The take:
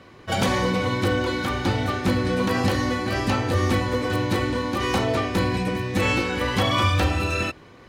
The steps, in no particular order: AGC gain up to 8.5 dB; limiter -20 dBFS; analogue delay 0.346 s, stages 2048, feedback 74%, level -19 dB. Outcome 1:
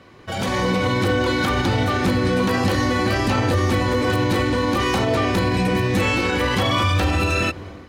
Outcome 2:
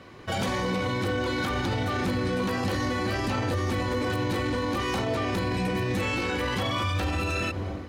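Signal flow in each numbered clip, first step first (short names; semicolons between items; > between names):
limiter > analogue delay > AGC; analogue delay > AGC > limiter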